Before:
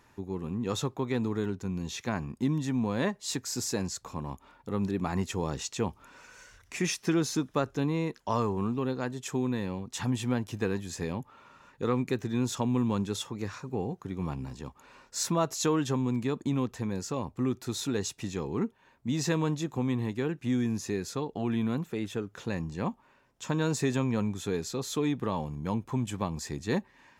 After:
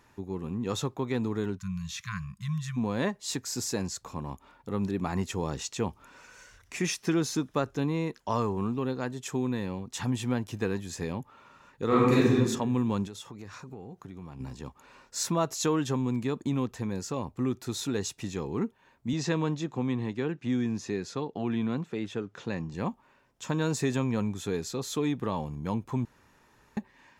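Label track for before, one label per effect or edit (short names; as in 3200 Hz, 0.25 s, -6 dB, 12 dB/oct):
1.570000	2.770000	spectral delete 210–1000 Hz
11.870000	12.330000	reverb throw, RT60 1.1 s, DRR -9 dB
13.070000	14.400000	compressor 4:1, threshold -40 dBFS
19.130000	22.740000	BPF 100–6000 Hz
26.050000	26.770000	room tone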